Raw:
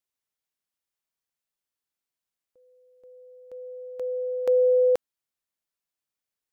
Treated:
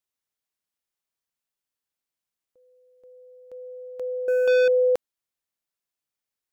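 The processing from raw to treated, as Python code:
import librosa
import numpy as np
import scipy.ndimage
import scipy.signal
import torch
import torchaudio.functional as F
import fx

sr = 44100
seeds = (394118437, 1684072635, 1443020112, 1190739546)

y = fx.leveller(x, sr, passes=3, at=(4.28, 4.68))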